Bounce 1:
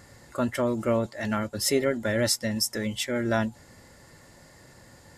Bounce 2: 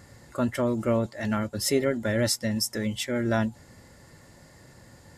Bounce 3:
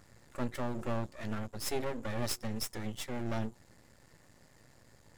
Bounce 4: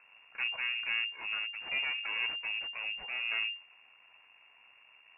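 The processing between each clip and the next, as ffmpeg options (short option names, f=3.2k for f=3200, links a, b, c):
-af "equalizer=f=110:w=0.39:g=4,volume=-1.5dB"
-af "bandreject=f=90.59:t=h:w=4,bandreject=f=181.18:t=h:w=4,bandreject=f=271.77:t=h:w=4,bandreject=f=362.36:t=h:w=4,aeval=exprs='max(val(0),0)':c=same,volume=-5.5dB"
-af "lowpass=f=2.4k:t=q:w=0.5098,lowpass=f=2.4k:t=q:w=0.6013,lowpass=f=2.4k:t=q:w=0.9,lowpass=f=2.4k:t=q:w=2.563,afreqshift=-2800"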